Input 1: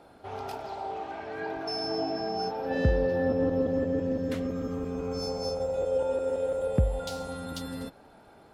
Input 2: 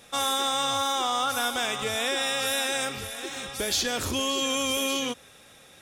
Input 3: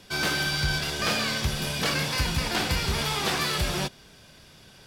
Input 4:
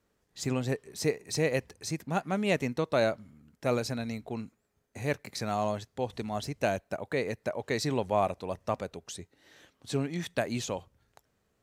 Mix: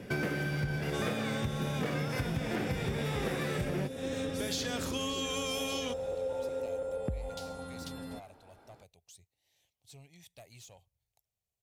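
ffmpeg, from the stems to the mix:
ffmpeg -i stem1.wav -i stem2.wav -i stem3.wav -i stem4.wav -filter_complex "[0:a]adelay=300,volume=-6dB[link_01];[1:a]equalizer=frequency=11000:width_type=o:width=0.77:gain=-4,adelay=800,volume=-6dB[link_02];[2:a]equalizer=frequency=125:width_type=o:width=1:gain=12,equalizer=frequency=250:width_type=o:width=1:gain=9,equalizer=frequency=500:width_type=o:width=1:gain=12,equalizer=frequency=1000:width_type=o:width=1:gain=-3,equalizer=frequency=2000:width_type=o:width=1:gain=8,equalizer=frequency=4000:width_type=o:width=1:gain=-10,equalizer=frequency=8000:width_type=o:width=1:gain=-4,volume=-2dB[link_03];[3:a]firequalizer=gain_entry='entry(110,0);entry(240,-17);entry(730,-2);entry(1400,-21);entry(2200,-1);entry(13000,10)':delay=0.05:min_phase=1,asoftclip=type=tanh:threshold=-30.5dB,volume=-15dB[link_04];[link_01][link_02][link_03][link_04]amix=inputs=4:normalize=0,acompressor=threshold=-30dB:ratio=10" out.wav

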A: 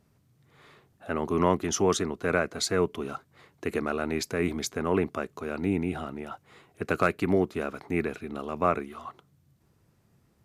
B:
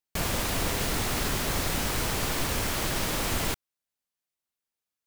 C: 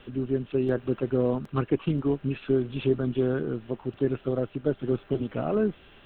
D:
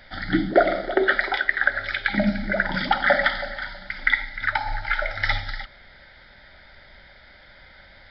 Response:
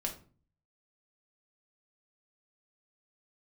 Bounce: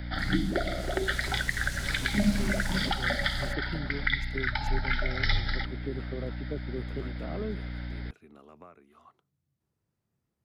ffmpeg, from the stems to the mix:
-filter_complex "[0:a]acompressor=threshold=-31dB:ratio=8,volume=-16dB[link_01];[1:a]afwtdn=0.0112,volume=-6.5dB,afade=type=in:start_time=0.72:duration=0.63:silence=0.316228,afade=type=out:start_time=2.73:duration=0.23:silence=0.446684[link_02];[2:a]adelay=1850,volume=-10dB[link_03];[3:a]aeval=exprs='val(0)+0.0158*(sin(2*PI*60*n/s)+sin(2*PI*2*60*n/s)/2+sin(2*PI*3*60*n/s)/3+sin(2*PI*4*60*n/s)/4+sin(2*PI*5*60*n/s)/5)':channel_layout=same,volume=1dB[link_04];[link_01][link_02][link_03][link_04]amix=inputs=4:normalize=0,acrossover=split=200|3000[link_05][link_06][link_07];[link_06]acompressor=threshold=-31dB:ratio=6[link_08];[link_05][link_08][link_07]amix=inputs=3:normalize=0"

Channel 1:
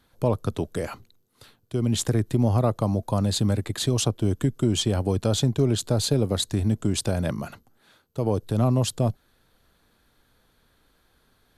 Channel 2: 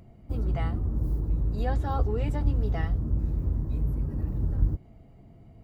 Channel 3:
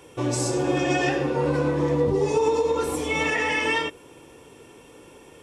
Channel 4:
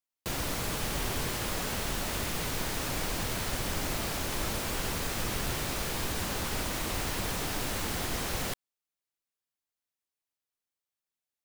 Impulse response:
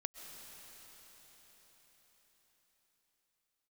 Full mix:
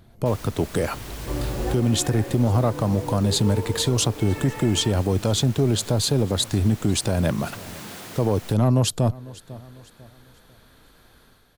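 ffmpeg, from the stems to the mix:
-filter_complex "[0:a]dynaudnorm=framelen=110:gausssize=7:maxgain=8.5dB,asoftclip=type=tanh:threshold=-5dB,volume=1.5dB,asplit=3[link_01][link_02][link_03];[link_02]volume=-23.5dB[link_04];[1:a]volume=-1.5dB[link_05];[2:a]lowpass=1700,adelay=1100,volume=-5.5dB[link_06];[3:a]highpass=frequency=140:width=0.5412,highpass=frequency=140:width=1.3066,asoftclip=type=tanh:threshold=-33dB,volume=-1.5dB[link_07];[link_03]apad=whole_len=248418[link_08];[link_05][link_08]sidechaincompress=threshold=-30dB:ratio=8:attack=16:release=569[link_09];[link_04]aecho=0:1:498|996|1494|1992|2490:1|0.36|0.13|0.0467|0.0168[link_10];[link_01][link_09][link_06][link_07][link_10]amix=inputs=5:normalize=0,alimiter=limit=-11.5dB:level=0:latency=1:release=424"

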